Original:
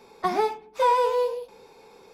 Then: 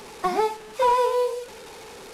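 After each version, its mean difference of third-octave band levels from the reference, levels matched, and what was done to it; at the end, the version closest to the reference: 6.5 dB: delta modulation 64 kbps, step -37 dBFS; gain +1 dB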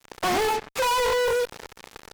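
10.5 dB: fuzz box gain 47 dB, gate -45 dBFS; gain -8.5 dB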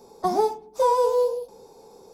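3.5 dB: EQ curve 760 Hz 0 dB, 2300 Hz -19 dB, 5800 Hz +2 dB; gain +3 dB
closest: third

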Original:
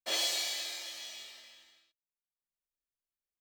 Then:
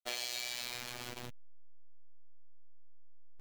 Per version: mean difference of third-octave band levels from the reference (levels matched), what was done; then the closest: 10.0 dB: level-crossing sampler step -37 dBFS; dynamic EQ 2300 Hz, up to +6 dB, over -56 dBFS, Q 7.9; compressor 6:1, threshold -35 dBFS, peak gain reduction 7.5 dB; robotiser 122 Hz; gain +1.5 dB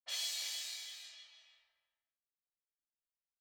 6.0 dB: notches 50/100/150 Hz; low-pass opened by the level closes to 740 Hz, open at -34.5 dBFS; passive tone stack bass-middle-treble 10-0-10; on a send: echo 0.319 s -6 dB; on the sum: gain -5.5 dB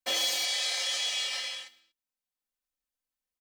4.5 dB: sample leveller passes 1; spectral gain 0.45–1.68, 350–11000 Hz +12 dB; limiter -26.5 dBFS, peak gain reduction 16 dB; comb 3.9 ms, depth 81%; gain +2 dB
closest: third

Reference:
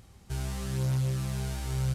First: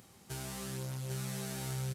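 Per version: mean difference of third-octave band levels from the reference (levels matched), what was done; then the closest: 5.5 dB: HPF 170 Hz 12 dB/oct; high shelf 9000 Hz +7.5 dB; compressor, threshold -37 dBFS, peak gain reduction 7.5 dB; on a send: echo 0.798 s -3.5 dB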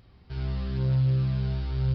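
8.0 dB: notch 800 Hz, Q 23; on a send: darkening echo 61 ms, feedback 56%, low-pass 1800 Hz, level -3 dB; on the sum: downsampling 11025 Hz; gain -2.5 dB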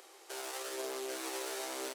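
14.5 dB: one-sided fold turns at -31.5 dBFS; steep high-pass 330 Hz 72 dB/oct; limiter -35 dBFS, peak gain reduction 8 dB; on a send: echo 0.798 s -3 dB; on the sum: gain +6 dB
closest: first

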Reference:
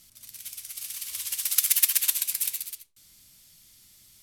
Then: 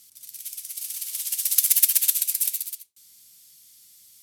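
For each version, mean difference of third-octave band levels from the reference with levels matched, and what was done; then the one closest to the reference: 3.5 dB: HPF 130 Hz 6 dB/oct; high shelf 3200 Hz +12 dB; in parallel at -10 dB: hard clip -6.5 dBFS, distortion -9 dB; on the sum: gain -9.5 dB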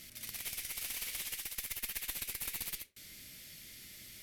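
14.5 dB: graphic EQ 250/500/1000/2000/8000 Hz +4/+8/-7/+10/-4 dB; reverse; compressor 12:1, threshold -38 dBFS, peak gain reduction 23 dB; reverse; one-sided clip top -45 dBFS; gain +4.5 dB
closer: first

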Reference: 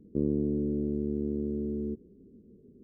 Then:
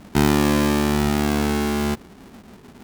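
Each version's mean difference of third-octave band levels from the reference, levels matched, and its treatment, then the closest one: 16.0 dB: half-waves squared off; gain +7.5 dB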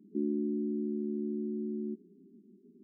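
6.0 dB: FFT band-pass 170–430 Hz; gain -2.5 dB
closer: second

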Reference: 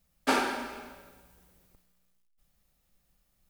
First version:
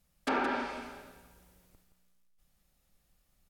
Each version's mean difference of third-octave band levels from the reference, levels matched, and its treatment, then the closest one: 5.0 dB: treble ducked by the level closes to 2200 Hz, closed at -24.5 dBFS; limiter -20.5 dBFS, peak gain reduction 7.5 dB; echo 0.171 s -9 dB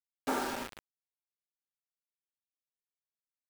11.5 dB: LPF 1400 Hz 12 dB/oct; in parallel at 0 dB: limiter -25.5 dBFS, peak gain reduction 10.5 dB; on the sum: bit-crush 5-bit; gain -8.5 dB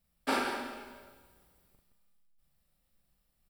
2.0 dB: notch 6500 Hz, Q 5.2; resonator 73 Hz, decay 1.8 s, harmonics all, mix 50%; loudspeakers at several distances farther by 14 m -4 dB, 58 m -9 dB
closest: third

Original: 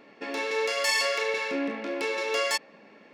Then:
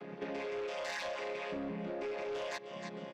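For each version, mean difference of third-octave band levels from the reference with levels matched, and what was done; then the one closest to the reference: 9.0 dB: chord vocoder major triad, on C#3; on a send: feedback echo 0.312 s, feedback 38%, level -19 dB; on the sum: soft clip -26 dBFS, distortion -14 dB; compressor 6:1, threshold -45 dBFS, peak gain reduction 15 dB; gain +6.5 dB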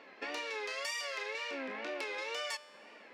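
5.0 dB: weighting filter A; compressor 5:1, threshold -37 dBFS, peak gain reduction 14.5 dB; wow and flutter 120 cents; resonator 99 Hz, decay 1.7 s, harmonics all, mix 50%; gain +5.5 dB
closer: second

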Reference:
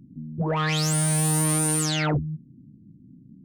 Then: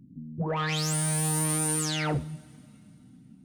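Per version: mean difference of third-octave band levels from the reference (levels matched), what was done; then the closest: 3.0 dB: two-slope reverb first 0.56 s, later 3.3 s, from -18 dB, DRR 12 dB; gain -4 dB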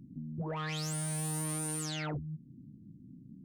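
1.5 dB: compressor 2.5:1, threshold -36 dBFS, peak gain reduction 10.5 dB; gain -3 dB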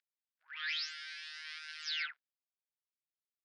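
13.5 dB: Chebyshev band-pass 1500–5200 Hz, order 4; gain -7.5 dB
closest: second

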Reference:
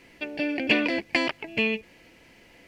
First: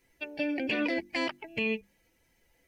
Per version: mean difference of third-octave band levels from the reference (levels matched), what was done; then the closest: 5.5 dB: per-bin expansion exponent 1.5; notches 50/100/150/200/250/300/350 Hz; limiter -20 dBFS, peak gain reduction 11.5 dB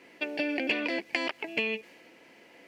4.0 dB: HPF 280 Hz 12 dB/oct; compressor 6:1, threshold -28 dBFS, peak gain reduction 11 dB; mismatched tape noise reduction decoder only; gain +2 dB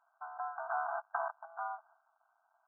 18.0 dB: cycle switcher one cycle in 2, muted; gate -53 dBFS, range -7 dB; brick-wall FIR band-pass 640–1600 Hz; gain -1 dB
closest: second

